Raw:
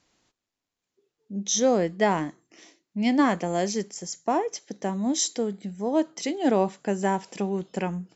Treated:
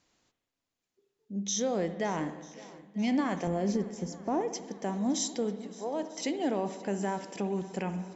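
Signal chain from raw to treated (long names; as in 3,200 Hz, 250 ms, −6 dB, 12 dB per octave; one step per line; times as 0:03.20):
0:03.47–0:04.41: spectral tilt −3.5 dB per octave
brickwall limiter −18 dBFS, peak gain reduction 8 dB
0:05.62–0:06.03: high-pass filter 420 Hz 12 dB per octave
on a send: feedback echo with a long and a short gap by turns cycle 943 ms, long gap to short 1.5 to 1, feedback 56%, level −20.5 dB
on the sum: spring reverb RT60 1.3 s, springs 60 ms, chirp 70 ms, DRR 10.5 dB
level −3.5 dB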